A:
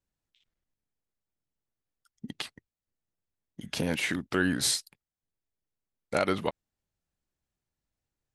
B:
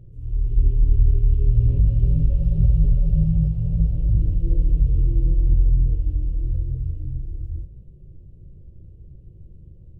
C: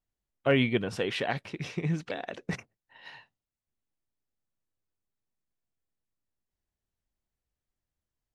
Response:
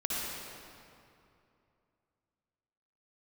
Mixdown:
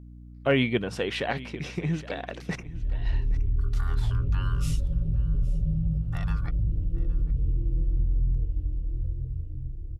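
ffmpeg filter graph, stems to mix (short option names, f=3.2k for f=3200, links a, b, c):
-filter_complex "[0:a]asubboost=boost=10:cutoff=85,aeval=exprs='val(0)*sin(2*PI*1300*n/s)':c=same,volume=-12.5dB,asplit=2[a][b];[b]volume=-21dB[c];[1:a]alimiter=limit=-12dB:level=0:latency=1:release=37,adelay=2500,volume=-6.5dB[d];[2:a]aeval=exprs='val(0)+0.00562*(sin(2*PI*60*n/s)+sin(2*PI*2*60*n/s)/2+sin(2*PI*3*60*n/s)/3+sin(2*PI*4*60*n/s)/4+sin(2*PI*5*60*n/s)/5)':c=same,volume=1.5dB,asplit=2[e][f];[f]volume=-17.5dB[g];[c][g]amix=inputs=2:normalize=0,aecho=0:1:817|1634|2451:1|0.16|0.0256[h];[a][d][e][h]amix=inputs=4:normalize=0"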